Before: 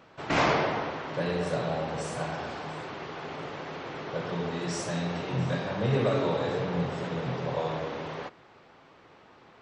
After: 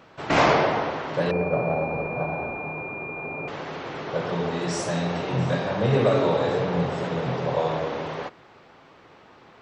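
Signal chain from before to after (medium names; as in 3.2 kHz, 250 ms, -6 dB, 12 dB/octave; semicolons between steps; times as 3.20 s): dynamic bell 640 Hz, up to +3 dB, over -38 dBFS, Q 0.93; 1.31–3.48 s: class-D stage that switches slowly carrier 2.4 kHz; trim +4 dB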